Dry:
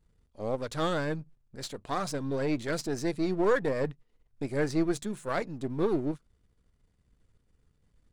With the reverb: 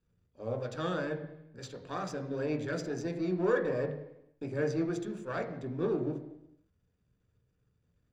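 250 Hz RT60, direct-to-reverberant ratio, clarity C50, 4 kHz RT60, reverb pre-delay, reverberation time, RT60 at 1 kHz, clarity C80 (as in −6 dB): 0.85 s, 4.0 dB, 9.5 dB, 0.90 s, 15 ms, 0.85 s, 0.85 s, 11.0 dB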